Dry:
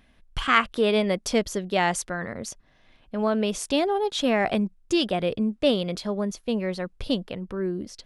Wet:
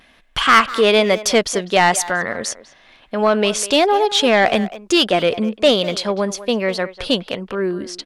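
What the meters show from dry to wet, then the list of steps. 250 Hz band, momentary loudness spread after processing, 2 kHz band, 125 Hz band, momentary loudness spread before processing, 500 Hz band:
+4.5 dB, 10 LU, +10.0 dB, +3.5 dB, 10 LU, +8.5 dB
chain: vibrato 1.1 Hz 37 cents; overdrive pedal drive 16 dB, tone 7700 Hz, clips at -4 dBFS; speakerphone echo 0.2 s, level -14 dB; gain +3 dB

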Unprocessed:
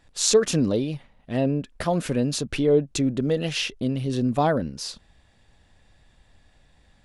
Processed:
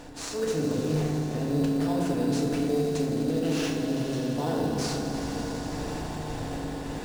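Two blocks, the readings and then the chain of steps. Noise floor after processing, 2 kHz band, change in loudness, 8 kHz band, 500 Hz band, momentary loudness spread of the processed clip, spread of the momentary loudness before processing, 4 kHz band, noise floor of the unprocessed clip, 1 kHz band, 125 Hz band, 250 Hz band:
-36 dBFS, -4.0 dB, -4.5 dB, -9.0 dB, -5.0 dB, 8 LU, 11 LU, -7.0 dB, -60 dBFS, -3.5 dB, -2.0 dB, -1.0 dB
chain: per-bin compression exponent 0.6; random-step tremolo; reverse; compressor 6:1, threshold -35 dBFS, peak gain reduction 18.5 dB; reverse; swelling echo 83 ms, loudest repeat 5, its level -13.5 dB; FDN reverb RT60 2.3 s, low-frequency decay 1.5×, high-frequency decay 0.3×, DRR -3.5 dB; in parallel at -5 dB: sample-rate reducer 4300 Hz, jitter 0%; on the sum: gain -1 dB

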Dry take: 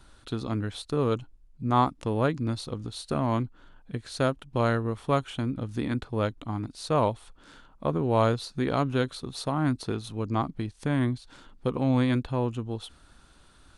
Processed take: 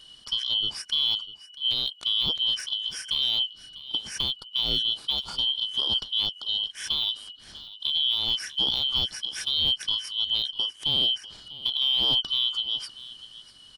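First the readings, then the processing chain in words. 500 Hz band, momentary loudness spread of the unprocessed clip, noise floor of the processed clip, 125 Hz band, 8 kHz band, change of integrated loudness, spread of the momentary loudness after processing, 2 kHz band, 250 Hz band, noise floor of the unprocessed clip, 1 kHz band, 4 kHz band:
-19.5 dB, 11 LU, -51 dBFS, -18.5 dB, +6.0 dB, +4.0 dB, 9 LU, -5.0 dB, -19.0 dB, -57 dBFS, -15.5 dB, +21.5 dB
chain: four-band scrambler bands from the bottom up 2413; de-esser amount 70%; on a send: echo 0.646 s -17.5 dB; on the sum: gain +3.5 dB

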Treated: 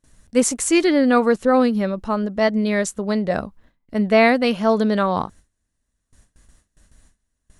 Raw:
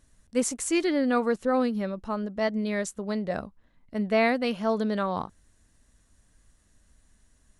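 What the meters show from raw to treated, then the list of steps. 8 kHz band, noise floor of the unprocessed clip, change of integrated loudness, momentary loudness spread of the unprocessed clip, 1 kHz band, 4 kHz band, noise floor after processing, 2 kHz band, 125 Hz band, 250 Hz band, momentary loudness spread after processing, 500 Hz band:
+8.5 dB, -65 dBFS, +8.5 dB, 9 LU, +8.5 dB, +8.5 dB, -76 dBFS, +8.5 dB, +8.5 dB, +8.5 dB, 9 LU, +8.5 dB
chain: gate with hold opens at -50 dBFS; gain +8.5 dB

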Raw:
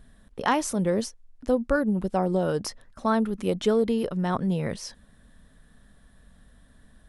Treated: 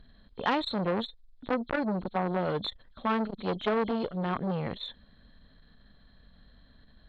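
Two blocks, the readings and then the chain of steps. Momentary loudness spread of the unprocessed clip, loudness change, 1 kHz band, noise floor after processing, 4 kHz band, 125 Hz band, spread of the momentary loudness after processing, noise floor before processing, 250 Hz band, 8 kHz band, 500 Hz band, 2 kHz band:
13 LU, -5.0 dB, -2.5 dB, -60 dBFS, +1.0 dB, -5.5 dB, 9 LU, -58 dBFS, -6.0 dB, under -25 dB, -6.0 dB, -2.5 dB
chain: nonlinear frequency compression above 3100 Hz 4:1; core saturation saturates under 1200 Hz; gain -2 dB

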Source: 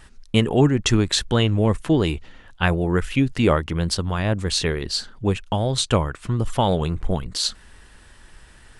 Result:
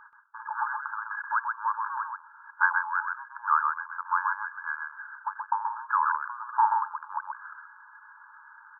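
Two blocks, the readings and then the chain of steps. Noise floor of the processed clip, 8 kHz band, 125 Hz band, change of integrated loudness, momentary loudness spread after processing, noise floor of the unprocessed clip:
-53 dBFS, under -40 dB, under -40 dB, -7.5 dB, 15 LU, -49 dBFS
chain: soft clip -13.5 dBFS, distortion -14 dB; brick-wall FIR band-pass 840–1700 Hz; on a send: echo 0.129 s -4.5 dB; on the sum: gain +6.5 dB

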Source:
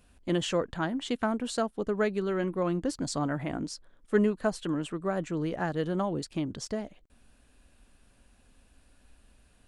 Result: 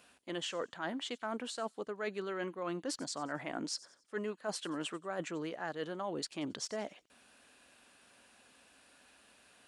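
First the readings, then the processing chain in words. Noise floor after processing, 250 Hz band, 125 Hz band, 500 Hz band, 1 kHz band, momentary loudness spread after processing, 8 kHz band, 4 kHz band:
-69 dBFS, -11.5 dB, -15.5 dB, -9.0 dB, -6.5 dB, 2 LU, -2.5 dB, -2.0 dB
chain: weighting filter A; reverse; compressor 10:1, threshold -40 dBFS, peak gain reduction 17 dB; reverse; thin delay 91 ms, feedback 38%, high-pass 5600 Hz, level -15 dB; gain +5 dB

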